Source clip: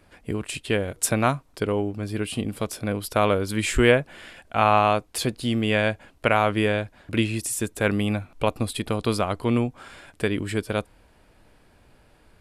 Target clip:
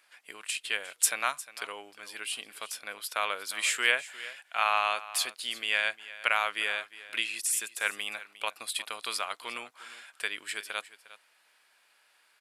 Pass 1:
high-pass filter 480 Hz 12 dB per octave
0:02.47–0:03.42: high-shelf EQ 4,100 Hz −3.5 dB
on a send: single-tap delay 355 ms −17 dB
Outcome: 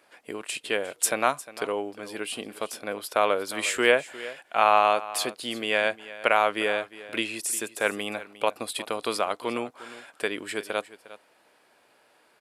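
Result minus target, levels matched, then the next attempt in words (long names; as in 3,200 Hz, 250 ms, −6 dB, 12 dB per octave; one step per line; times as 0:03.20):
500 Hz band +11.5 dB
high-pass filter 1,500 Hz 12 dB per octave
0:02.47–0:03.42: high-shelf EQ 4,100 Hz −3.5 dB
on a send: single-tap delay 355 ms −17 dB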